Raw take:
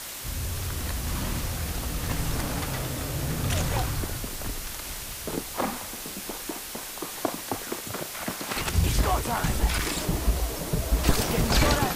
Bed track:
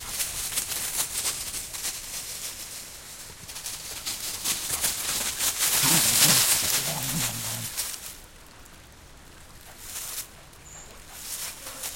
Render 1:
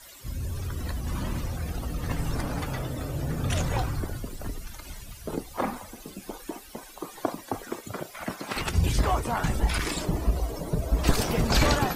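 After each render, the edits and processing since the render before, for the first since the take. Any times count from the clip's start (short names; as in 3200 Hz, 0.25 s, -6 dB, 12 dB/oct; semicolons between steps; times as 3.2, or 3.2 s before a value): denoiser 16 dB, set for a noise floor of -37 dBFS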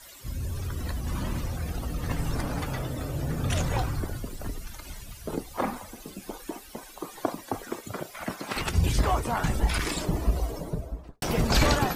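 10.42–11.22 studio fade out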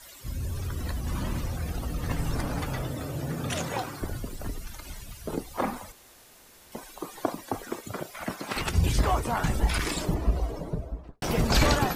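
2.91–4.01 HPF 75 Hz -> 270 Hz; 5.92–6.72 room tone; 10.14–11.24 LPF 3300 Hz 6 dB/oct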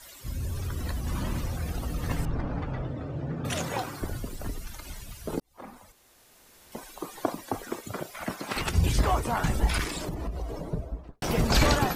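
2.25–3.45 tape spacing loss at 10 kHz 34 dB; 5.4–6.83 fade in; 9.84–10.66 compressor, threshold -29 dBFS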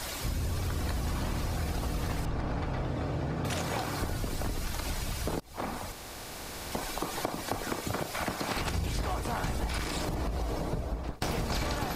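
per-bin compression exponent 0.6; compressor 6:1, threshold -29 dBFS, peak gain reduction 13.5 dB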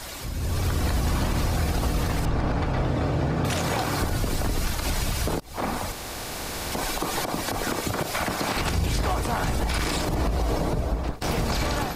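limiter -24 dBFS, peak gain reduction 9.5 dB; AGC gain up to 8.5 dB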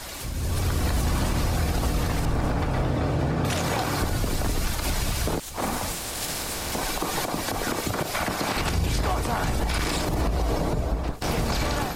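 add bed track -14 dB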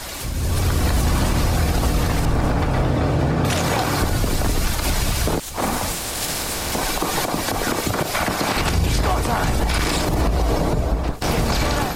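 gain +5.5 dB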